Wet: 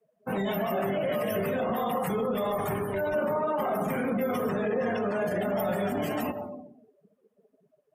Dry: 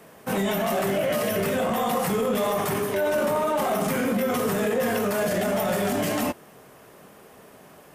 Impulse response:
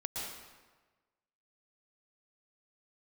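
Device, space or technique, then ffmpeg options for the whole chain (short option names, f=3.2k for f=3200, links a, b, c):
ducked reverb: -filter_complex "[0:a]asettb=1/sr,asplit=3[a][b][c];[a]atrim=end=4.494[d];[b]atrim=start=4.49:end=5.21,asetpts=PTS-STARTPTS,afade=t=in:d=0.004:c=qsin,afade=t=out:st=0.716:d=0.004:c=qsin,lowpass=8.6k[e];[c]atrim=start=5.206[f];[d][e]acrossfade=d=0.004:c1=hsin:c2=qsin[g];[g][f]acrossfade=d=0.004:c1=qsin:c2=hsin,asplit=3[h][i][j];[1:a]atrim=start_sample=2205[k];[i][k]afir=irnorm=-1:irlink=0[l];[j]apad=whole_len=350514[m];[l][m]sidechaincompress=threshold=-27dB:ratio=8:attack=16:release=143,volume=-4.5dB[n];[h][n]amix=inputs=2:normalize=0,asettb=1/sr,asplit=3[o][p][q];[o]atrim=end=2.254[r];[p]atrim=start=2.25:end=3.14,asetpts=PTS-STARTPTS,afade=t=in:d=0.004:c=qsin,afade=t=out:st=0.886:d=0.004:c=qsin,asubboost=boost=9.5:cutoff=140[s];[q]atrim=start=3.136[t];[r][s]acrossfade=d=0.004:c1=hsin:c2=qsin[u];[u][t]acrossfade=d=0.004:c1=qsin:c2=hsin,afftdn=nr=33:nf=-32,volume=-6dB"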